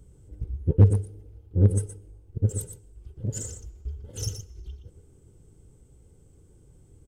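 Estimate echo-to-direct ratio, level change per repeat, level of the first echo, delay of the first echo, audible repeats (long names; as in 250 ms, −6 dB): −9.0 dB, repeats not evenly spaced, −9.0 dB, 119 ms, 1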